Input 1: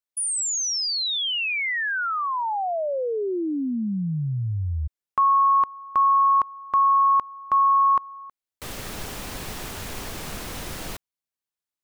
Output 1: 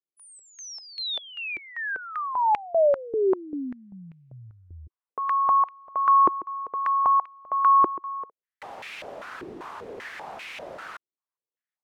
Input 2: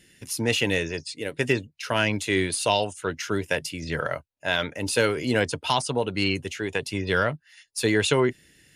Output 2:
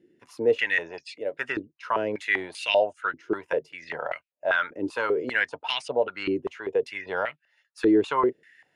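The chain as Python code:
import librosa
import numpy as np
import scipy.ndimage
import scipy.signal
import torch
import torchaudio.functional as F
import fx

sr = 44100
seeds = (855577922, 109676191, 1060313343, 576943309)

y = fx.filter_held_bandpass(x, sr, hz=5.1, low_hz=350.0, high_hz=2400.0)
y = y * librosa.db_to_amplitude(8.0)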